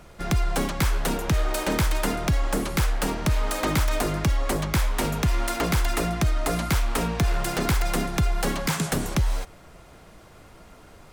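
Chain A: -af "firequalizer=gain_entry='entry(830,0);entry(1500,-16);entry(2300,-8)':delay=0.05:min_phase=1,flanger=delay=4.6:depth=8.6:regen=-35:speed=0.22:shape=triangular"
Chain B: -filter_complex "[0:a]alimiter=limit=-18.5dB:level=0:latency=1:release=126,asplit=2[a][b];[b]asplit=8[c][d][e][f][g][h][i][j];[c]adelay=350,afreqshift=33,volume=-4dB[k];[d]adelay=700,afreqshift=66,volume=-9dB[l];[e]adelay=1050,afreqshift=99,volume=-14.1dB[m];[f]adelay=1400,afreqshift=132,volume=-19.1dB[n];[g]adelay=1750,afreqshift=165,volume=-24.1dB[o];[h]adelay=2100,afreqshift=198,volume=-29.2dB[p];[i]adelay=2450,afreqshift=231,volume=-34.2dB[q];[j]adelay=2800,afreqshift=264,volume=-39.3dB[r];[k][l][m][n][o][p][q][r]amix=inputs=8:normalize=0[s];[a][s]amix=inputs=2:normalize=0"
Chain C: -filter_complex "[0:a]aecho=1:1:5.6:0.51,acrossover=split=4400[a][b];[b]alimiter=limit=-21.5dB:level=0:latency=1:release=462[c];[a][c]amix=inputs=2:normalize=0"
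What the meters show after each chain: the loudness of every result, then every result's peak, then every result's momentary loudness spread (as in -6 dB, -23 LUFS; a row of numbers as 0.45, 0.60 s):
-31.0, -26.0, -25.0 LUFS; -16.5, -12.5, -12.0 dBFS; 3, 6, 2 LU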